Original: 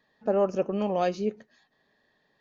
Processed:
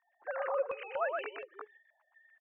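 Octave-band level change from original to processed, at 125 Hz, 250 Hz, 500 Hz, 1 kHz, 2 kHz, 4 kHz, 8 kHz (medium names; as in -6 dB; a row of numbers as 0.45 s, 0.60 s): under -35 dB, -31.0 dB, -9.0 dB, -6.0 dB, +3.5 dB, -8.5 dB, no reading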